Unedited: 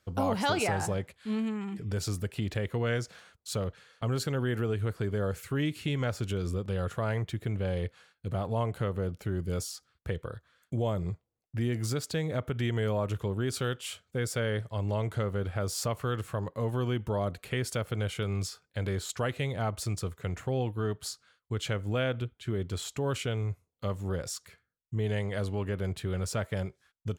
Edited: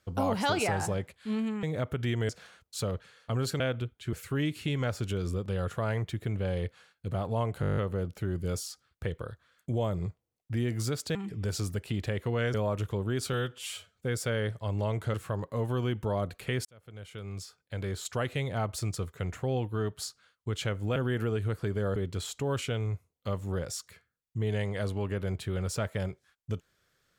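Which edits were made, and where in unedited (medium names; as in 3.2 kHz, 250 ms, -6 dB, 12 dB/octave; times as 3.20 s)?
1.63–3.02 s: swap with 12.19–12.85 s
4.33–5.33 s: swap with 22.00–22.53 s
8.81 s: stutter 0.02 s, 9 plays
13.64–14.06 s: stretch 1.5×
15.24–16.18 s: delete
17.69–19.32 s: fade in linear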